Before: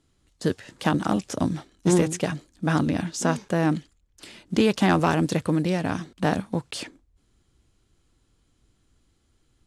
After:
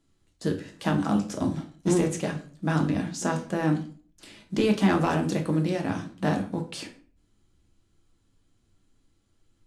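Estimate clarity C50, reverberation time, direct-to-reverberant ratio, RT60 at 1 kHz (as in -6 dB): 11.5 dB, 0.45 s, 2.5 dB, 0.40 s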